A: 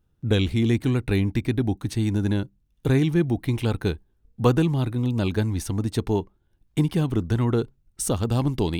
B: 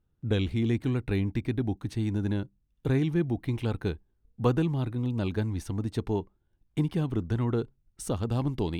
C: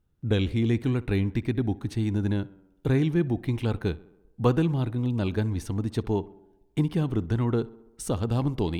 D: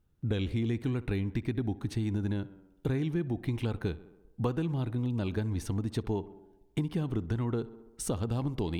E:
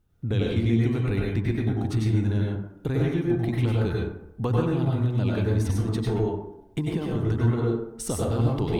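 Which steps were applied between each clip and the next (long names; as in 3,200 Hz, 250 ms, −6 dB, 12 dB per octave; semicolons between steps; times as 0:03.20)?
high-shelf EQ 4,800 Hz −8.5 dB; level −5.5 dB
tape delay 64 ms, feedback 69%, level −19 dB, low-pass 2,300 Hz; level +2.5 dB
downward compressor 4 to 1, threshold −28 dBFS, peak gain reduction 10.5 dB
dense smooth reverb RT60 0.64 s, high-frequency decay 0.45×, pre-delay 85 ms, DRR −3.5 dB; level +2.5 dB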